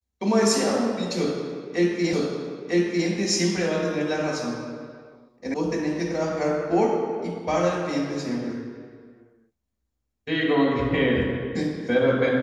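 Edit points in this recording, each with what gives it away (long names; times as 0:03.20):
0:02.13: the same again, the last 0.95 s
0:05.54: cut off before it has died away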